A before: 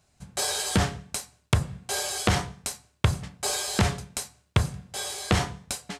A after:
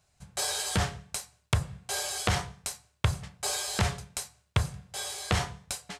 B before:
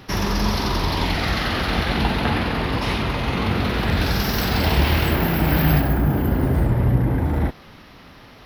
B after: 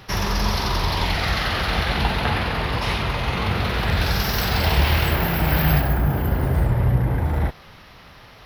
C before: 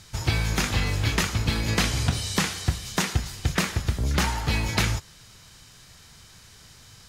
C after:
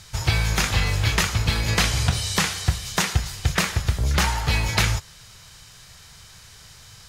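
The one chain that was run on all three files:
peaking EQ 270 Hz -9 dB 0.99 oct; peak normalisation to -6 dBFS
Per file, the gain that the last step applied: -3.0 dB, +1.0 dB, +4.0 dB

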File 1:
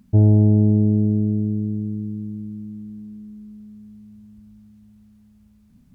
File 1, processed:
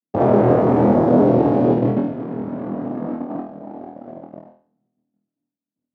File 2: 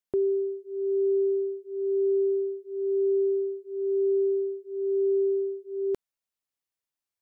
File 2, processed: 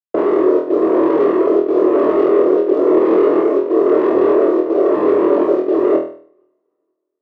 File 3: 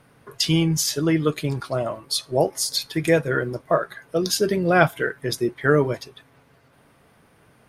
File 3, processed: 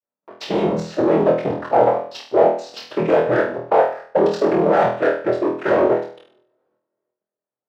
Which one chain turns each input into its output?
noise-vocoded speech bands 12; expander -46 dBFS; distance through air 90 m; waveshaping leveller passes 5; two-slope reverb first 0.4 s, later 2 s, from -25 dB, DRR 15.5 dB; level held to a coarse grid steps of 11 dB; band-pass filter 590 Hz, Q 1.5; flutter echo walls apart 4.2 m, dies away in 0.46 s; peak normalisation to -2 dBFS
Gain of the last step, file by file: +3.5 dB, +11.5 dB, -1.0 dB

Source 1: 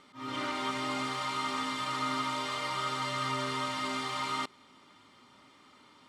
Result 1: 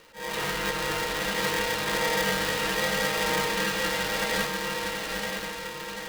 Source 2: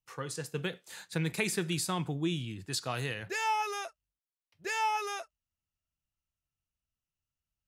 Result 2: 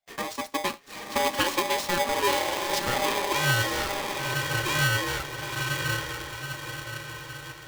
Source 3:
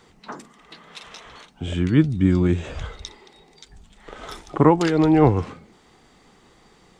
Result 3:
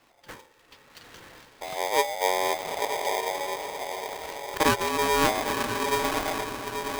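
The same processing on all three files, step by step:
median filter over 5 samples; frequency shift -39 Hz; echo that smears into a reverb 950 ms, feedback 51%, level -3 dB; polarity switched at an audio rate 700 Hz; normalise loudness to -27 LUFS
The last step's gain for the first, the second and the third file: +5.0 dB, +6.0 dB, -8.0 dB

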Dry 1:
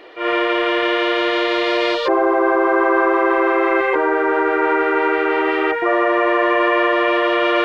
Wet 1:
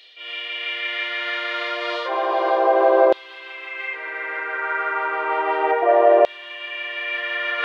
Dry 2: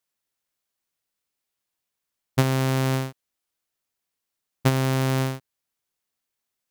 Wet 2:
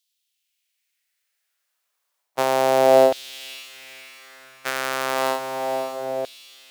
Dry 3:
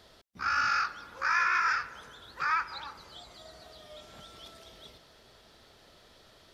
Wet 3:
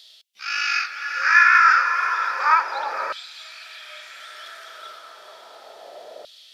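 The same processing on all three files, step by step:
resonant low shelf 790 Hz +9.5 dB, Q 1.5; harmonic-percussive split percussive -9 dB; reverse; compression 6:1, threshold -16 dBFS; reverse; echo that smears into a reverb 544 ms, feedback 50%, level -8 dB; LFO high-pass saw down 0.32 Hz 610–3600 Hz; peak normalisation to -3 dBFS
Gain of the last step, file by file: +2.5 dB, +9.0 dB, +11.0 dB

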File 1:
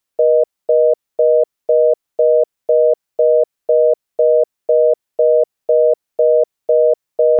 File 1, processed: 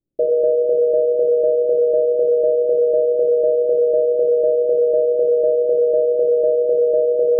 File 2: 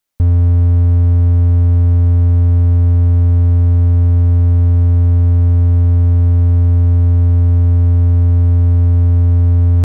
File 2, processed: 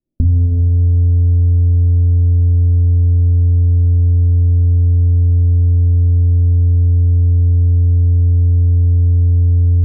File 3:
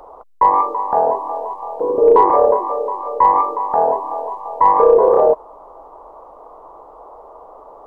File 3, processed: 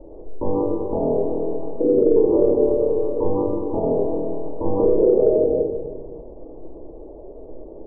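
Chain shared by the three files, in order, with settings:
inverse Chebyshev low-pass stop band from 1.8 kHz, stop band 70 dB; simulated room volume 1100 m³, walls mixed, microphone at 2.5 m; compression 4:1, threshold -20 dBFS; trim +7 dB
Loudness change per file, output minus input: -1.5 LU, -1.0 LU, -5.0 LU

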